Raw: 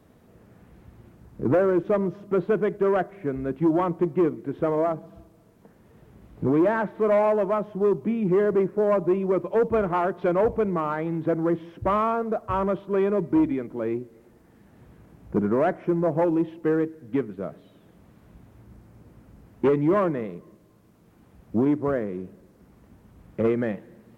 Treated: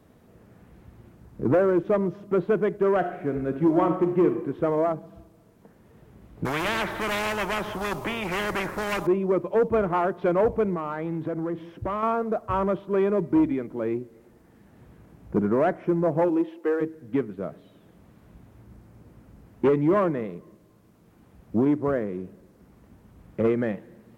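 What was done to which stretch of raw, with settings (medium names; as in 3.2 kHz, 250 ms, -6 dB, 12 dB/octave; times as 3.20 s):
2.97–4.26 s: reverb throw, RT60 0.89 s, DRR 5.5 dB
6.45–9.07 s: spectrum-flattening compressor 4:1
10.74–12.03 s: compression, threshold -25 dBFS
16.28–16.80 s: high-pass 190 Hz -> 400 Hz 24 dB/octave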